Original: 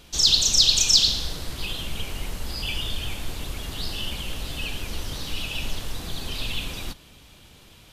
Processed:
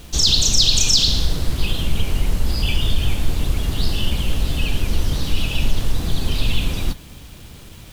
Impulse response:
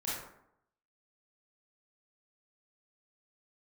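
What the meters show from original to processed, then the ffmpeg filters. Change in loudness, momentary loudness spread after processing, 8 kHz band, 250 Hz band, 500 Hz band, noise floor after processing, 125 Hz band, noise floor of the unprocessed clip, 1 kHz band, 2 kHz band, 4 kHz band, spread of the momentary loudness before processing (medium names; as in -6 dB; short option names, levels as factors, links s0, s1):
+3.5 dB, 11 LU, +2.5 dB, +10.5 dB, +7.5 dB, -40 dBFS, +13.0 dB, -51 dBFS, +5.0 dB, +4.0 dB, +2.0 dB, 18 LU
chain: -filter_complex "[0:a]lowshelf=f=370:g=10,asplit=2[s0][s1];[s1]alimiter=limit=0.282:level=0:latency=1:release=65,volume=1.33[s2];[s0][s2]amix=inputs=2:normalize=0,acrusher=bits=6:mix=0:aa=0.000001,volume=0.668"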